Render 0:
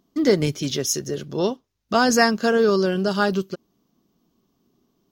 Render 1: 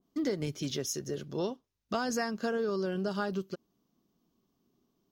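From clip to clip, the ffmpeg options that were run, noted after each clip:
-af "acompressor=threshold=0.1:ratio=6,adynamicequalizer=threshold=0.0126:dfrequency=1900:dqfactor=0.7:tfrequency=1900:tqfactor=0.7:attack=5:release=100:ratio=0.375:range=2:mode=cutabove:tftype=highshelf,volume=0.398"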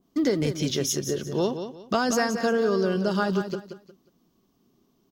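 -af "aecho=1:1:180|360|540:0.355|0.0958|0.0259,volume=2.51"

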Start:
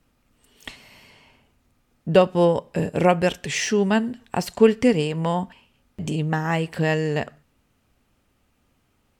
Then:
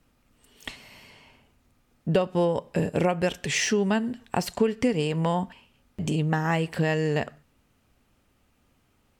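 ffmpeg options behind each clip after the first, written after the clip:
-af "acompressor=threshold=0.112:ratio=6"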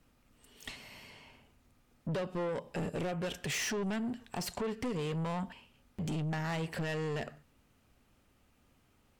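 -filter_complex "[0:a]asplit=2[s0][s1];[s1]alimiter=limit=0.112:level=0:latency=1:release=78,volume=1.06[s2];[s0][s2]amix=inputs=2:normalize=0,asoftclip=type=tanh:threshold=0.0708,volume=0.376"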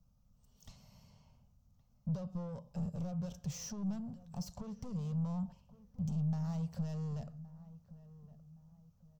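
-filter_complex "[0:a]firequalizer=gain_entry='entry(190,0);entry(310,-28);entry(540,-12);entry(1200,-15);entry(1800,-29);entry(5900,-6);entry(9300,-23);entry(15000,-7)':delay=0.05:min_phase=1,asplit=2[s0][s1];[s1]adelay=1118,lowpass=f=1200:p=1,volume=0.141,asplit=2[s2][s3];[s3]adelay=1118,lowpass=f=1200:p=1,volume=0.4,asplit=2[s4][s5];[s5]adelay=1118,lowpass=f=1200:p=1,volume=0.4[s6];[s0][s2][s4][s6]amix=inputs=4:normalize=0,volume=1.12"

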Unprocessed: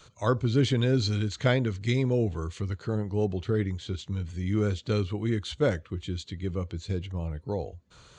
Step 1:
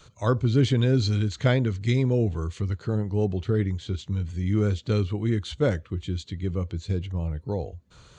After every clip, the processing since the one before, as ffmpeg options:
-af "lowshelf=f=250:g=5"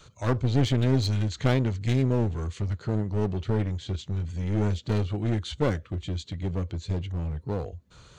-af "aeval=exprs='clip(val(0),-1,0.0473)':c=same"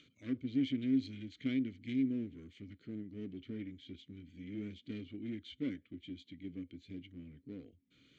-filter_complex "[0:a]acompressor=mode=upward:threshold=0.01:ratio=2.5,asplit=3[s0][s1][s2];[s0]bandpass=f=270:t=q:w=8,volume=1[s3];[s1]bandpass=f=2290:t=q:w=8,volume=0.501[s4];[s2]bandpass=f=3010:t=q:w=8,volume=0.355[s5];[s3][s4][s5]amix=inputs=3:normalize=0,volume=0.841"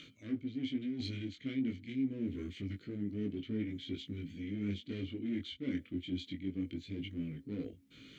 -af "areverse,acompressor=threshold=0.00501:ratio=5,areverse,flanger=delay=18.5:depth=4:speed=0.26,volume=5.01"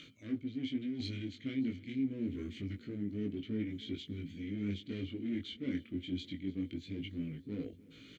-af "aecho=1:1:297|594|891|1188:0.0841|0.0488|0.0283|0.0164"

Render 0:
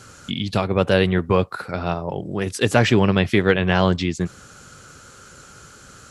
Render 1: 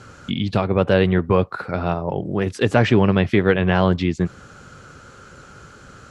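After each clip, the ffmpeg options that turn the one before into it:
-filter_complex "[0:a]aemphasis=mode=reproduction:type=75fm,asplit=2[s0][s1];[s1]alimiter=limit=0.237:level=0:latency=1:release=262,volume=0.708[s2];[s0][s2]amix=inputs=2:normalize=0,volume=0.794"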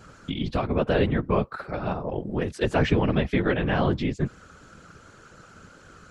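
-af "afftfilt=real='hypot(re,im)*cos(2*PI*random(0))':imag='hypot(re,im)*sin(2*PI*random(1))':win_size=512:overlap=0.75"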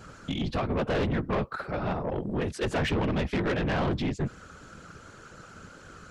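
-af "asoftclip=type=tanh:threshold=0.0562,volume=1.19"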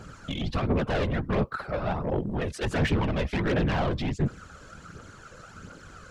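-af "aphaser=in_gain=1:out_gain=1:delay=2:decay=0.44:speed=1.4:type=triangular"

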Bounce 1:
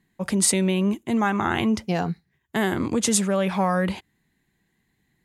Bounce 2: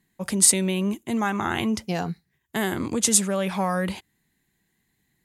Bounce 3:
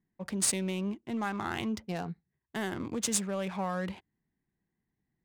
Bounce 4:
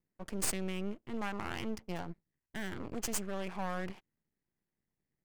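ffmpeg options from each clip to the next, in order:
-af "aemphasis=mode=production:type=cd,volume=0.75"
-af "adynamicsmooth=sensitivity=6.5:basefreq=1400,volume=0.376"
-af "asuperstop=centerf=3700:order=4:qfactor=4.1,aeval=exprs='max(val(0),0)':c=same,volume=0.841"

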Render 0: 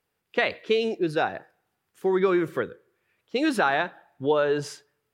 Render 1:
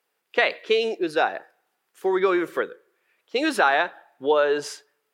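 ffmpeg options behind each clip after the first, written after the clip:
-af "highpass=390,volume=1.58"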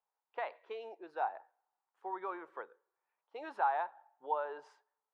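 -af "bandpass=f=890:t=q:w=4.5:csg=0,volume=0.501"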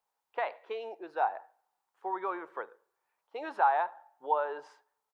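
-filter_complex "[0:a]asplit=2[s0][s1];[s1]adelay=73,lowpass=f=2100:p=1,volume=0.0794,asplit=2[s2][s3];[s3]adelay=73,lowpass=f=2100:p=1,volume=0.37,asplit=2[s4][s5];[s5]adelay=73,lowpass=f=2100:p=1,volume=0.37[s6];[s0][s2][s4][s6]amix=inputs=4:normalize=0,volume=2"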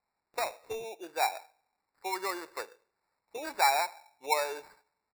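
-af "acrusher=samples=14:mix=1:aa=0.000001"

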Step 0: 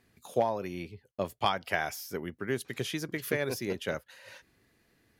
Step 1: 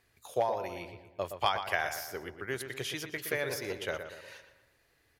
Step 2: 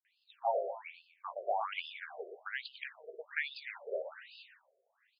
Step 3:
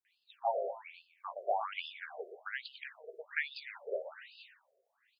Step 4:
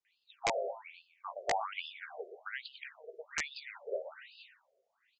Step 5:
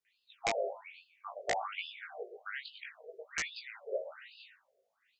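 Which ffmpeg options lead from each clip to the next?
-filter_complex "[0:a]equalizer=f=210:t=o:w=1.2:g=-14,asplit=2[s0][s1];[s1]adelay=119,lowpass=f=2800:p=1,volume=0.398,asplit=2[s2][s3];[s3]adelay=119,lowpass=f=2800:p=1,volume=0.5,asplit=2[s4][s5];[s5]adelay=119,lowpass=f=2800:p=1,volume=0.5,asplit=2[s6][s7];[s7]adelay=119,lowpass=f=2800:p=1,volume=0.5,asplit=2[s8][s9];[s9]adelay=119,lowpass=f=2800:p=1,volume=0.5,asplit=2[s10][s11];[s11]adelay=119,lowpass=f=2800:p=1,volume=0.5[s12];[s2][s4][s6][s8][s10][s12]amix=inputs=6:normalize=0[s13];[s0][s13]amix=inputs=2:normalize=0"
-filter_complex "[0:a]asplit=2[s0][s1];[s1]adelay=17,volume=0.224[s2];[s0][s2]amix=inputs=2:normalize=0,acrossover=split=340[s3][s4];[s4]adelay=50[s5];[s3][s5]amix=inputs=2:normalize=0,afftfilt=real='re*between(b*sr/1024,490*pow(3700/490,0.5+0.5*sin(2*PI*1.2*pts/sr))/1.41,490*pow(3700/490,0.5+0.5*sin(2*PI*1.2*pts/sr))*1.41)':imag='im*between(b*sr/1024,490*pow(3700/490,0.5+0.5*sin(2*PI*1.2*pts/sr))/1.41,490*pow(3700/490,0.5+0.5*sin(2*PI*1.2*pts/sr))*1.41)':win_size=1024:overlap=0.75,volume=1.19"
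-filter_complex "[0:a]acrossover=split=1200[s0][s1];[s0]aeval=exprs='val(0)*(1-0.5/2+0.5/2*cos(2*PI*4.6*n/s))':c=same[s2];[s1]aeval=exprs='val(0)*(1-0.5/2-0.5/2*cos(2*PI*4.6*n/s))':c=same[s3];[s2][s3]amix=inputs=2:normalize=0,volume=1.26"
-af "bandreject=f=1700:w=17,aresample=16000,aeval=exprs='(mod(14.1*val(0)+1,2)-1)/14.1':c=same,aresample=44100"
-af "equalizer=f=930:w=3.6:g=-5.5,flanger=delay=17:depth=2.8:speed=0.57,volume=1.5"

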